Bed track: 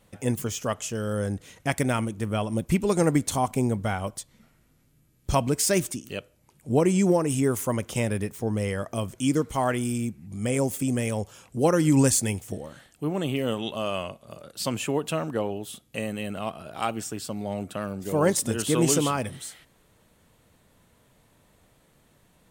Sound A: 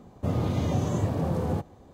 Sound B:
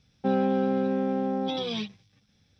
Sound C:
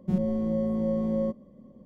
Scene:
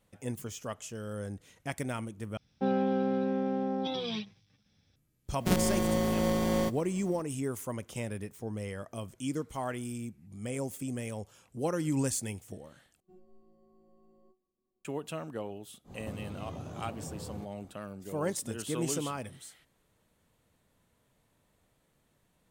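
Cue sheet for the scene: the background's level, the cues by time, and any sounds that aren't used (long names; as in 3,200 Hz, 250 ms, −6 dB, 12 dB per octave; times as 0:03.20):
bed track −10.5 dB
0:02.37: overwrite with B −4 dB
0:05.38: mix in C −1 dB + compressing power law on the bin magnitudes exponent 0.5
0:13.00: overwrite with C −13 dB + stiff-string resonator 370 Hz, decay 0.22 s, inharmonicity 0.002
0:15.84: mix in A −16 dB, fades 0.10 s + multiband upward and downward compressor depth 100%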